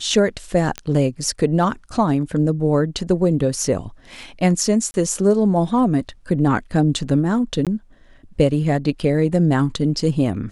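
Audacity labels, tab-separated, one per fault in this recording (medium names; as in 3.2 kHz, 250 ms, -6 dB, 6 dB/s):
0.780000	0.780000	pop -11 dBFS
4.910000	4.940000	dropout 30 ms
7.650000	7.670000	dropout 17 ms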